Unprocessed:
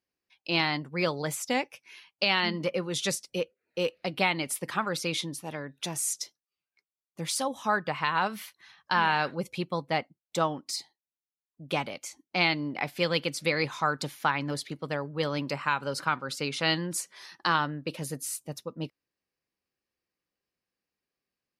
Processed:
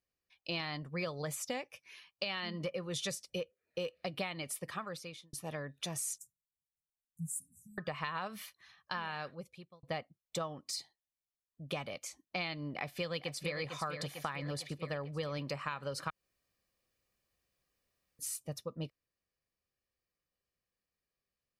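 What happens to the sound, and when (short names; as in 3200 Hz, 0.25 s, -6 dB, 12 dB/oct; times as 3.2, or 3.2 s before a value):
4.27–5.33 fade out
6.18–7.78 Chebyshev band-stop 180–7500 Hz, order 5
8.36–9.83 fade out linear
12.71–13.57 echo throw 0.45 s, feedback 55%, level -9 dB
16.1–18.19 room tone
whole clip: low shelf 95 Hz +10 dB; comb 1.7 ms, depth 36%; compressor, threshold -30 dBFS; gain -4.5 dB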